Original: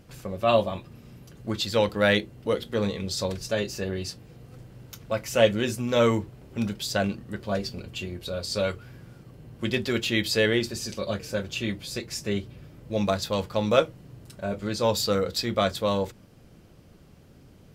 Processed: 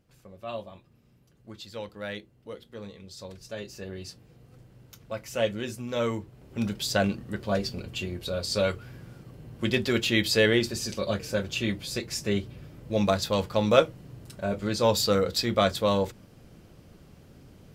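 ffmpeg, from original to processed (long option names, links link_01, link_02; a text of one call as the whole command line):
ffmpeg -i in.wav -af "volume=1dB,afade=type=in:start_time=3.12:duration=1:silence=0.398107,afade=type=in:start_time=6.24:duration=0.59:silence=0.398107" out.wav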